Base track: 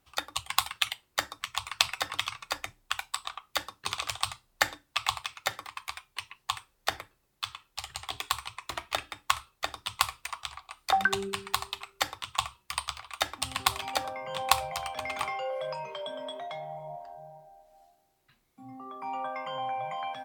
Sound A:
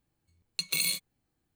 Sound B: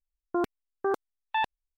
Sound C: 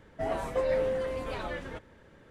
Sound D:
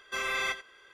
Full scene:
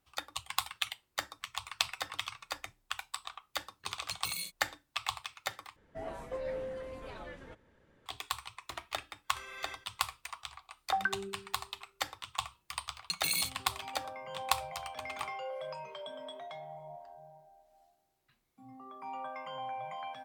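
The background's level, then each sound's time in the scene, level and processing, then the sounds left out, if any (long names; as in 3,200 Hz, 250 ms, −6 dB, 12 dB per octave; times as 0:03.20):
base track −6.5 dB
0:03.52: mix in A −10 dB
0:05.76: overwrite with C −10 dB
0:09.23: mix in D −15.5 dB, fades 0.05 s
0:12.51: mix in A −3.5 dB
not used: B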